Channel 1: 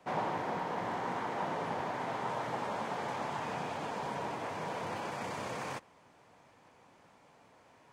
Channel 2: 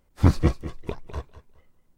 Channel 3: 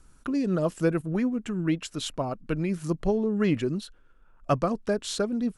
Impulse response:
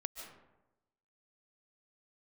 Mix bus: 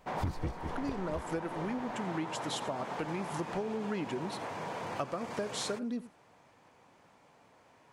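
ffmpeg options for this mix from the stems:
-filter_complex "[0:a]volume=-0.5dB[a];[1:a]asoftclip=type=tanh:threshold=-11dB,volume=-1dB[b];[2:a]highpass=f=270:p=1,adelay=500,volume=-2dB,asplit=2[c][d];[d]volume=-17.5dB,aecho=0:1:87:1[e];[a][b][c][e]amix=inputs=4:normalize=0,acompressor=threshold=-32dB:ratio=6"

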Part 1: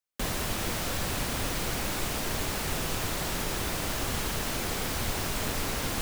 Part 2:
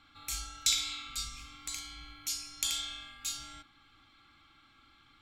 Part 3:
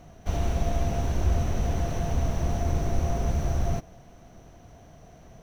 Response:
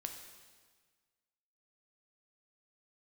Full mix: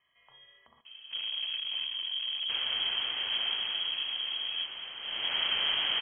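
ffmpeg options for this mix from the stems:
-filter_complex "[0:a]adelay=2300,volume=7dB,afade=t=out:st=3.47:d=0.53:silence=0.446684,afade=t=in:st=5.01:d=0.39:silence=0.237137[a];[1:a]acompressor=threshold=-36dB:ratio=5,volume=-15dB,asplit=3[b][c][d];[b]atrim=end=0.81,asetpts=PTS-STARTPTS,afade=t=out:st=0.806:d=0.004:c=hsin[e];[c]atrim=start=0.81:end=1.65,asetpts=PTS-STARTPTS,volume=0[f];[d]atrim=start=1.65,asetpts=PTS-STARTPTS,afade=t=in:d=0.004:c=hsin[g];[e][f][g]concat=n=3:v=0:a=1,asplit=2[h][i];[i]volume=-3.5dB[j];[2:a]aeval=exprs='(tanh(44.7*val(0)+0.4)-tanh(0.4))/44.7':c=same,adelay=850,volume=-3dB[k];[3:a]atrim=start_sample=2205[l];[j][l]afir=irnorm=-1:irlink=0[m];[a][h][k][m]amix=inputs=4:normalize=0,equalizer=f=200:t=o:w=0.48:g=13.5,lowpass=f=2.8k:t=q:w=0.5098,lowpass=f=2.8k:t=q:w=0.6013,lowpass=f=2.8k:t=q:w=0.9,lowpass=f=2.8k:t=q:w=2.563,afreqshift=-3300"

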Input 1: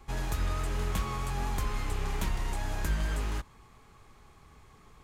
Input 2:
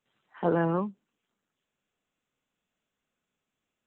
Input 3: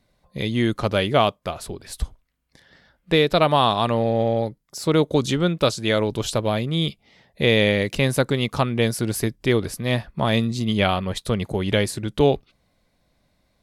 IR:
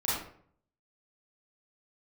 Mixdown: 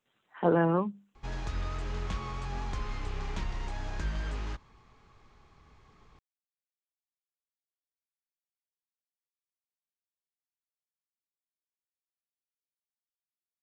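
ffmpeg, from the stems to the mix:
-filter_complex "[0:a]lowpass=f=6.1k:w=0.5412,lowpass=f=6.1k:w=1.3066,adelay=1150,volume=-3.5dB[a];[1:a]bandreject=f=50:t=h:w=6,bandreject=f=100:t=h:w=6,bandreject=f=150:t=h:w=6,bandreject=f=200:t=h:w=6,volume=1dB[b];[a][b]amix=inputs=2:normalize=0"

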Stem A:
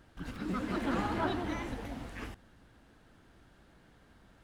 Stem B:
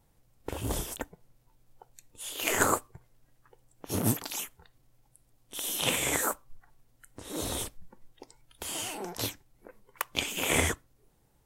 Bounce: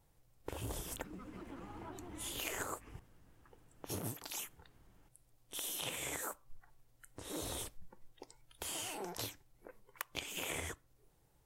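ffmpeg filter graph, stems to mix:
-filter_complex "[0:a]equalizer=f=630:t=o:w=0.67:g=-5,equalizer=f=1.6k:t=o:w=0.67:g=-7,equalizer=f=4k:t=o:w=0.67:g=-9,acompressor=threshold=-40dB:ratio=10,adelay=650,volume=-4.5dB[a];[1:a]volume=-3.5dB[b];[a][b]amix=inputs=2:normalize=0,equalizer=f=230:w=4.5:g=-7.5,acompressor=threshold=-38dB:ratio=8"

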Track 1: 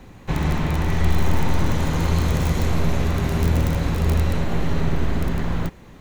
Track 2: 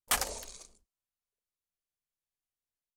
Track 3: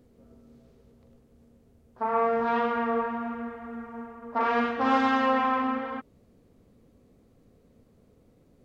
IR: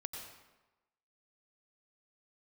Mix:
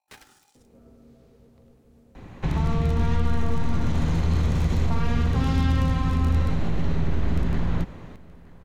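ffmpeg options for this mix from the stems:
-filter_complex "[0:a]aemphasis=mode=reproduction:type=50fm,alimiter=limit=-14dB:level=0:latency=1:release=63,adelay=2150,volume=-1dB,asplit=3[a][b][c];[b]volume=-10.5dB[d];[c]volume=-23.5dB[e];[1:a]acrossover=split=4600[f][g];[g]acompressor=threshold=-42dB:ratio=4:attack=1:release=60[h];[f][h]amix=inputs=2:normalize=0,aeval=exprs='val(0)+0.000447*(sin(2*PI*50*n/s)+sin(2*PI*2*50*n/s)/2+sin(2*PI*3*50*n/s)/3+sin(2*PI*4*50*n/s)/4+sin(2*PI*5*50*n/s)/5)':c=same,aeval=exprs='val(0)*sgn(sin(2*PI*820*n/s))':c=same,volume=-16dB[i];[2:a]adelay=550,volume=-0.5dB,asplit=2[j][k];[k]volume=-4dB[l];[3:a]atrim=start_sample=2205[m];[d][l]amix=inputs=2:normalize=0[n];[n][m]afir=irnorm=-1:irlink=0[o];[e]aecho=0:1:924:1[p];[a][i][j][o][p]amix=inputs=5:normalize=0,acrossover=split=250|3000[q][r][s];[r]acompressor=threshold=-34dB:ratio=6[t];[q][t][s]amix=inputs=3:normalize=0"

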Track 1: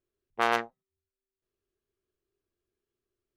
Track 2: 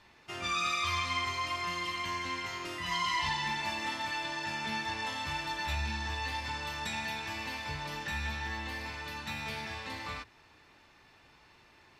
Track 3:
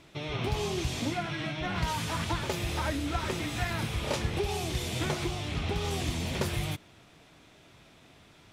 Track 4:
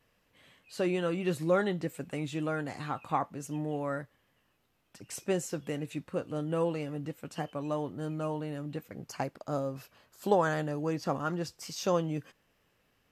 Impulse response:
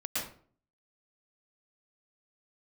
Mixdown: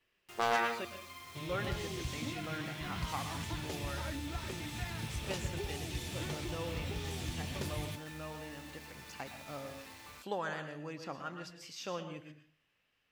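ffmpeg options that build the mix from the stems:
-filter_complex "[0:a]bandreject=f=117.5:t=h:w=4,bandreject=f=235:t=h:w=4,bandreject=f=352.5:t=h:w=4,volume=-3.5dB,asplit=2[a][b];[b]volume=-7.5dB[c];[1:a]acompressor=threshold=-39dB:ratio=3,acrusher=bits=6:mix=0:aa=0.000001,volume=-11dB[d];[2:a]equalizer=f=880:w=0.54:g=-6.5,adelay=1200,volume=-7dB[e];[3:a]equalizer=f=2.7k:t=o:w=2.1:g=12,volume=-15.5dB,asplit=3[f][g][h];[f]atrim=end=0.85,asetpts=PTS-STARTPTS,afade=t=out:st=0.846:d=0.004:c=hsin[i];[g]atrim=start=0.85:end=1.37,asetpts=PTS-STARTPTS,volume=0[j];[h]atrim=start=1.37,asetpts=PTS-STARTPTS,afade=t=in:d=0.004:c=hsin[k];[i][j][k]concat=n=3:v=0:a=1,asplit=2[l][m];[m]volume=-10.5dB[n];[4:a]atrim=start_sample=2205[o];[c][n]amix=inputs=2:normalize=0[p];[p][o]afir=irnorm=-1:irlink=0[q];[a][d][e][l][q]amix=inputs=5:normalize=0,asoftclip=type=hard:threshold=-21.5dB"

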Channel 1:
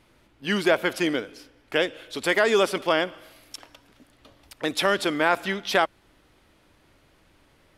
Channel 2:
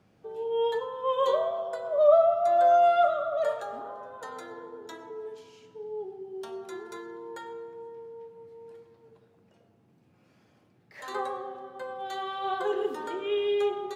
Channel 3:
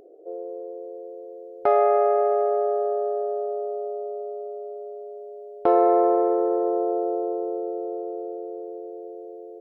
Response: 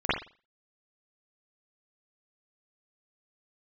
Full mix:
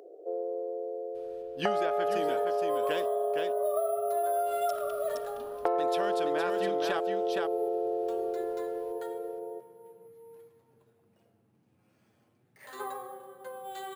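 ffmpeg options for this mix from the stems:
-filter_complex "[0:a]bandreject=f=2.1k:w=7.5,adelay=1150,volume=-4dB,asplit=3[a][b][c];[a]atrim=end=3.06,asetpts=PTS-STARTPTS,afade=t=out:st=3.056:d=0.004:c=hsin[d];[b]atrim=start=3.06:end=4.46,asetpts=PTS-STARTPTS,volume=0[e];[c]atrim=start=4.46,asetpts=PTS-STARTPTS,afade=t=in:d=0.004:c=hsin[f];[d][e][f]concat=n=3:v=0:a=1,asplit=2[g][h];[h]volume=-7dB[i];[1:a]flanger=delay=5.5:depth=3.9:regen=-43:speed=0.25:shape=sinusoidal,acrusher=samples=4:mix=1:aa=0.000001,adelay=1650,volume=-1.5dB[j];[2:a]highpass=f=350:w=0.5412,highpass=f=350:w=1.3066,volume=1dB,asplit=2[k][l];[l]volume=-19dB[m];[i][m]amix=inputs=2:normalize=0,aecho=0:1:466:1[n];[g][j][k][n]amix=inputs=4:normalize=0,acompressor=threshold=-26dB:ratio=6"

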